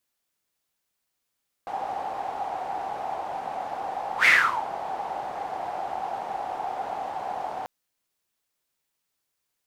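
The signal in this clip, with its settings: whoosh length 5.99 s, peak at 2.59, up 0.10 s, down 0.41 s, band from 780 Hz, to 2100 Hz, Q 8.6, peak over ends 16 dB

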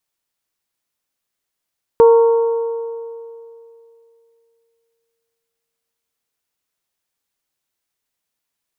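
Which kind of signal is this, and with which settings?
metal hit bell, length 4.81 s, lowest mode 461 Hz, modes 4, decay 2.76 s, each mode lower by 10.5 dB, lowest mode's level -4.5 dB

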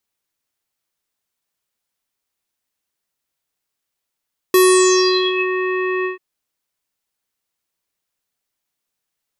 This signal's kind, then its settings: synth note square F#4 24 dB/oct, low-pass 2300 Hz, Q 8.6, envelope 2.5 oct, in 0.93 s, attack 2.5 ms, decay 0.78 s, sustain -10.5 dB, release 0.13 s, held 1.51 s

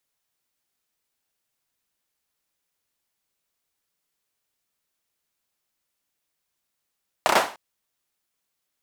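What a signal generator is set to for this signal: hand clap length 0.30 s, bursts 4, apart 31 ms, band 780 Hz, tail 0.37 s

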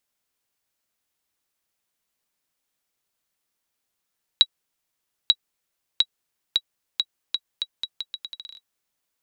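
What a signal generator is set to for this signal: bouncing ball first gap 0.89 s, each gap 0.79, 3880 Hz, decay 52 ms -2 dBFS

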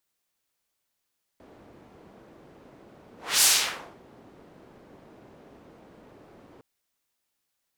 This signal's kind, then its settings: whoosh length 5.21 s, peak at 2.03, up 0.28 s, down 0.59 s, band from 370 Hz, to 7700 Hz, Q 0.87, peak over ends 34 dB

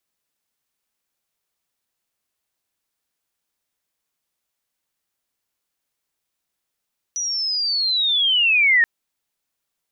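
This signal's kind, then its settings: chirp linear 5900 Hz -> 1800 Hz -22 dBFS -> -11.5 dBFS 1.68 s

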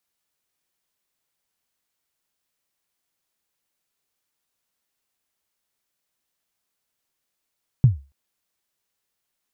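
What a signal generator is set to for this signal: kick drum length 0.28 s, from 140 Hz, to 69 Hz, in 0.139 s, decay 0.29 s, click off, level -6 dB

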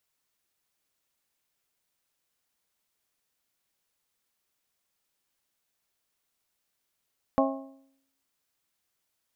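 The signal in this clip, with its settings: metal hit bell, lowest mode 270 Hz, modes 5, decay 0.72 s, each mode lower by 1 dB, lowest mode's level -22 dB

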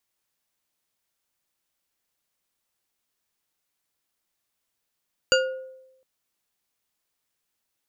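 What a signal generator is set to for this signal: glass hit bar, length 0.71 s, lowest mode 522 Hz, decay 0.93 s, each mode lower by 1 dB, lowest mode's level -17 dB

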